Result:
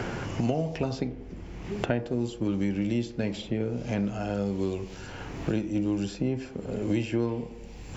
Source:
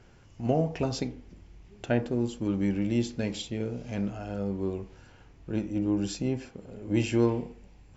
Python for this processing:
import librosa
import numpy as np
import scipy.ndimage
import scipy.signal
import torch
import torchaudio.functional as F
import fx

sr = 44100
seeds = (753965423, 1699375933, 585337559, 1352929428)

p1 = fx.dynamic_eq(x, sr, hz=6800.0, q=2.1, threshold_db=-57.0, ratio=4.0, max_db=-4)
p2 = p1 + fx.echo_wet_bandpass(p1, sr, ms=95, feedback_pct=46, hz=400.0, wet_db=-15.0, dry=0)
y = fx.band_squash(p2, sr, depth_pct=100)